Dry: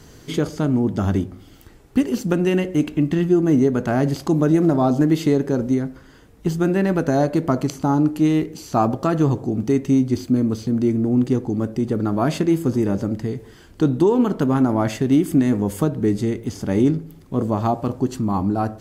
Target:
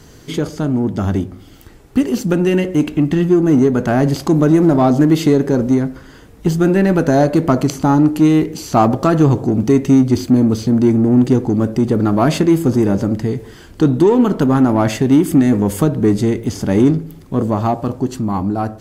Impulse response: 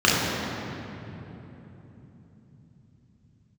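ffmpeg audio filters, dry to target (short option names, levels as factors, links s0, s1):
-filter_complex "[0:a]dynaudnorm=f=150:g=21:m=3.76,asplit=2[s0][s1];[s1]asoftclip=type=tanh:threshold=0.133,volume=0.596[s2];[s0][s2]amix=inputs=2:normalize=0,volume=0.891"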